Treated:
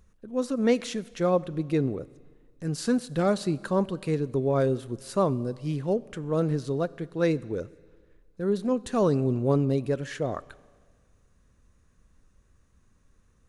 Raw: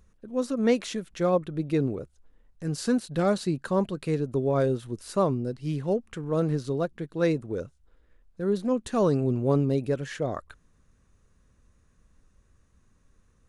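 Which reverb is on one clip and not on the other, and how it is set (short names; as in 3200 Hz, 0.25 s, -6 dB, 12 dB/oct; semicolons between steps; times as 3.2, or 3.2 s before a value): Schroeder reverb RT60 1.7 s, combs from 30 ms, DRR 20 dB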